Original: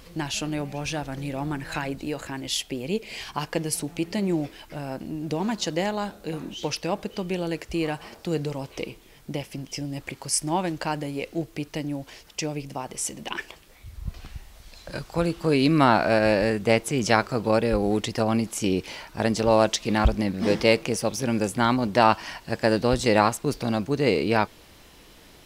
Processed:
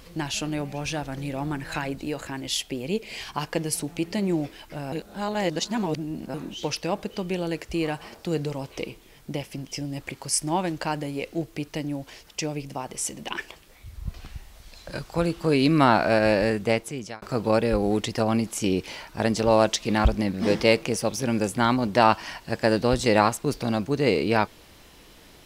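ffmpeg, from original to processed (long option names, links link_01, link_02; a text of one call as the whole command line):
ffmpeg -i in.wav -filter_complex "[0:a]asplit=4[link_01][link_02][link_03][link_04];[link_01]atrim=end=4.922[link_05];[link_02]atrim=start=4.918:end=6.342,asetpts=PTS-STARTPTS,areverse[link_06];[link_03]atrim=start=6.338:end=17.22,asetpts=PTS-STARTPTS,afade=type=out:start_time=10.202:duration=0.68[link_07];[link_04]atrim=start=17.22,asetpts=PTS-STARTPTS,afade=type=in:duration=0.004:curve=hsin[link_08];[link_05][link_06]acrossfade=duration=0.004:curve1=hsin:curve2=hsin[link_09];[link_07][link_08]concat=n=2:v=0:a=1[link_10];[link_09][link_10]acrossfade=duration=0.004:curve1=hsin:curve2=hsin" out.wav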